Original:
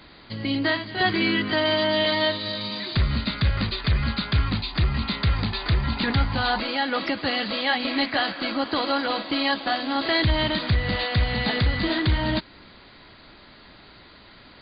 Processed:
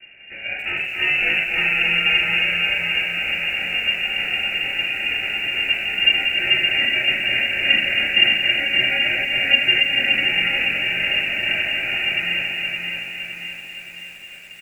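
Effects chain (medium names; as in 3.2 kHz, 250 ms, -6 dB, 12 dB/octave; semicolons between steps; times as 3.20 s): high-pass 430 Hz 24 dB/octave; comb 2.3 ms, depth 97%; in parallel at +3 dB: compression 8:1, threshold -34 dBFS, peak gain reduction 18.5 dB; on the sum: sample-and-hold 26×; crossover distortion -42 dBFS; on a send: feedback delay 274 ms, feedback 50%, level -7 dB; on the sum: simulated room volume 93 m³, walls mixed, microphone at 1.9 m; frequency inversion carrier 2.8 kHz; bit-crushed delay 569 ms, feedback 55%, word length 6-bit, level -5.5 dB; trim -10.5 dB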